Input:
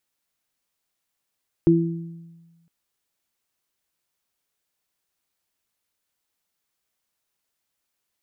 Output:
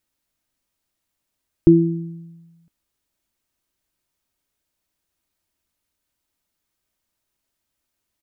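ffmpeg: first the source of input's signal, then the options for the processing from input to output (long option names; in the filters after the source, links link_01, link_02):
-f lavfi -i "aevalsrc='0.158*pow(10,-3*t/1.37)*sin(2*PI*167*t)+0.282*pow(10,-3*t/0.71)*sin(2*PI*334*t)':duration=1.01:sample_rate=44100"
-af "lowshelf=frequency=270:gain=10.5,aecho=1:1:3.2:0.3"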